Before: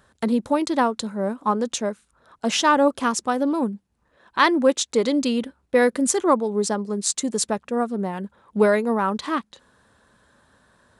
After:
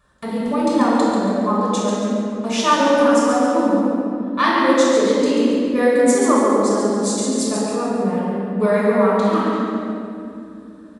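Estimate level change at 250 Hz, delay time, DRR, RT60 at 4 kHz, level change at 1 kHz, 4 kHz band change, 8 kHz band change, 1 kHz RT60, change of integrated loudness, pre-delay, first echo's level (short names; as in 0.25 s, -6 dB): +6.5 dB, 0.139 s, -8.5 dB, 1.6 s, +4.0 dB, +1.5 dB, +0.5 dB, 2.4 s, +4.5 dB, 3 ms, -5.0 dB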